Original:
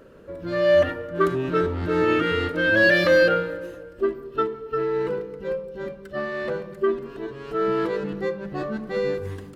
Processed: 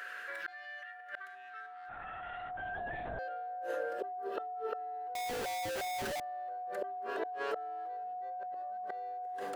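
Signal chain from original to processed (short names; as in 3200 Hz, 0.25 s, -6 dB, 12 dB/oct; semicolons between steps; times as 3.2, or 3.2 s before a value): bell 1600 Hz +7 dB 0.3 oct; flipped gate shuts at -23 dBFS, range -37 dB; whine 730 Hz -50 dBFS; high-pass sweep 1800 Hz -> 600 Hz, 1.45–2.95; 1.89–3.19 LPC vocoder at 8 kHz whisper; 5.15–6.2 Schmitt trigger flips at -48.5 dBFS; fast leveller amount 50%; gain -2.5 dB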